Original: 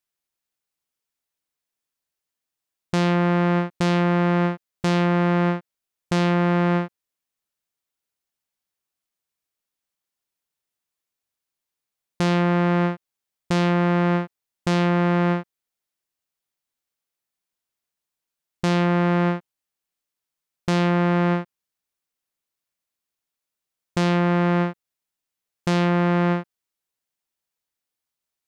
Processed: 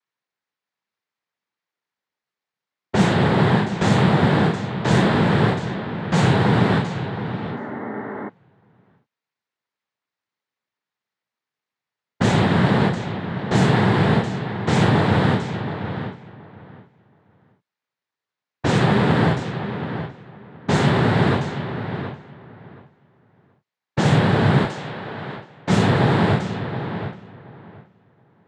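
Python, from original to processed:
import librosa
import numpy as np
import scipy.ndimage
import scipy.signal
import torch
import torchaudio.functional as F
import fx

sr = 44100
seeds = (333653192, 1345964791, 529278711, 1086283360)

y = fx.comb_fb(x, sr, f0_hz=240.0, decay_s=1.0, harmonics='all', damping=0.0, mix_pct=40)
y = fx.noise_vocoder(y, sr, seeds[0], bands=6)
y = fx.echo_feedback(y, sr, ms=725, feedback_pct=18, wet_db=-10)
y = fx.env_lowpass(y, sr, base_hz=2200.0, full_db=-19.5)
y = fx.spec_repair(y, sr, seeds[1], start_s=7.39, length_s=0.87, low_hz=200.0, high_hz=2200.0, source='before')
y = fx.low_shelf(y, sr, hz=240.0, db=-11.5, at=(24.65, 25.7))
y = y * librosa.db_to_amplitude(7.5)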